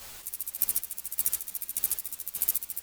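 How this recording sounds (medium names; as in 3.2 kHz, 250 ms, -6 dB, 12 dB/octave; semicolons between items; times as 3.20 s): a quantiser's noise floor 8-bit, dither triangular; chopped level 1.7 Hz, depth 60%, duty 35%; a shimmering, thickened sound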